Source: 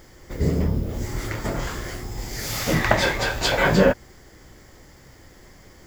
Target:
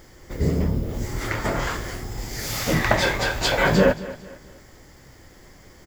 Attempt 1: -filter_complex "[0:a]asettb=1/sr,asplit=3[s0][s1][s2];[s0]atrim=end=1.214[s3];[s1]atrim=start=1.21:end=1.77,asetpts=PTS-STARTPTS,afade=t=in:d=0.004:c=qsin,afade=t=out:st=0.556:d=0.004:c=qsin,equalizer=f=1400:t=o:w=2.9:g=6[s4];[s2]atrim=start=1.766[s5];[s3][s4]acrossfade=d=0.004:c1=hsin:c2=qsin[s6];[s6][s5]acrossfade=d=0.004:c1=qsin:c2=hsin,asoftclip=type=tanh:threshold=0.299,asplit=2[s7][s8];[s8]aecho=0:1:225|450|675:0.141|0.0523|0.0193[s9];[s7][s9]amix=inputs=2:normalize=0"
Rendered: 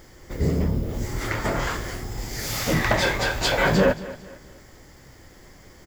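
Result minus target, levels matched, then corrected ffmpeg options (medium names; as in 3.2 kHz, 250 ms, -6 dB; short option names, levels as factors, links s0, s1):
saturation: distortion +12 dB
-filter_complex "[0:a]asettb=1/sr,asplit=3[s0][s1][s2];[s0]atrim=end=1.214[s3];[s1]atrim=start=1.21:end=1.77,asetpts=PTS-STARTPTS,afade=t=in:d=0.004:c=qsin,afade=t=out:st=0.556:d=0.004:c=qsin,equalizer=f=1400:t=o:w=2.9:g=6[s4];[s2]atrim=start=1.766[s5];[s3][s4]acrossfade=d=0.004:c1=hsin:c2=qsin[s6];[s6][s5]acrossfade=d=0.004:c1=qsin:c2=hsin,asoftclip=type=tanh:threshold=0.794,asplit=2[s7][s8];[s8]aecho=0:1:225|450|675:0.141|0.0523|0.0193[s9];[s7][s9]amix=inputs=2:normalize=0"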